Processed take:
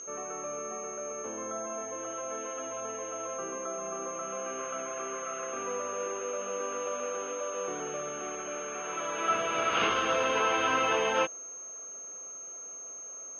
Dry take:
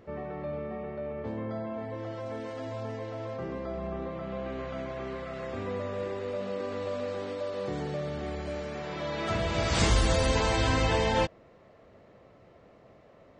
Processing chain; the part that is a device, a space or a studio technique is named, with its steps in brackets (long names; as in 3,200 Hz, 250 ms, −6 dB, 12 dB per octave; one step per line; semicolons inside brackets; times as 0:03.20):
toy sound module (linearly interpolated sample-rate reduction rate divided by 4×; switching amplifier with a slow clock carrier 6,400 Hz; loudspeaker in its box 560–4,700 Hz, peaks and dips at 600 Hz −6 dB, 870 Hz −9 dB, 1,300 Hz +6 dB, 1,900 Hz −10 dB, 2,800 Hz +6 dB, 4,200 Hz −8 dB)
level +6 dB